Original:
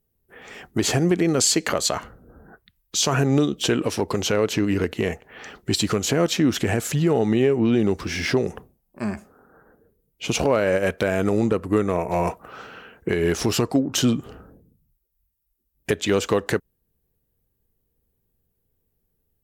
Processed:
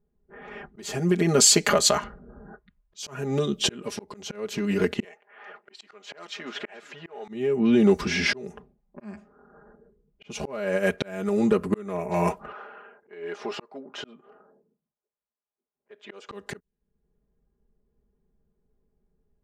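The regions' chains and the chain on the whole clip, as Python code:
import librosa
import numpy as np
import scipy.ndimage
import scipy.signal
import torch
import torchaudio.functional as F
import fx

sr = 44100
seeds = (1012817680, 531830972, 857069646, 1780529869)

y = fx.chain(x, sr, fx.highpass(hz=670.0, slope=12),
    fx.high_shelf(hz=3800.0, db=-6.0),
    fx.echo_single(ms=434, db=-18.0), at=(5.04, 7.28))
y = fx.chain(y, sr, fx.highpass(hz=530.0, slope=12),
    fx.high_shelf(hz=2100.0, db=-10.0), at=(12.52, 16.28))
y = fx.env_lowpass(y, sr, base_hz=1300.0, full_db=-18.5)
y = y + 0.91 * np.pad(y, (int(4.9 * sr / 1000.0), 0))[:len(y)]
y = fx.auto_swell(y, sr, attack_ms=666.0)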